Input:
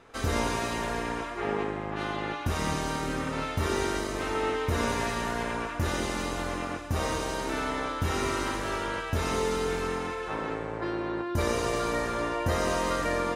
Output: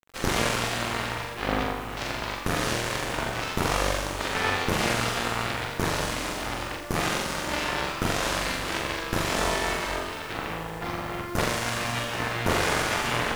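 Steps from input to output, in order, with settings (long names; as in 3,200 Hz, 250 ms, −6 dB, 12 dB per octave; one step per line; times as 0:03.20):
0:11.45–0:12.11: high-pass filter 400 Hz 12 dB per octave
harmonic generator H 6 −11 dB, 7 −12 dB, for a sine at −13 dBFS
bit reduction 8 bits
on a send: flutter between parallel walls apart 7.3 metres, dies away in 0.6 s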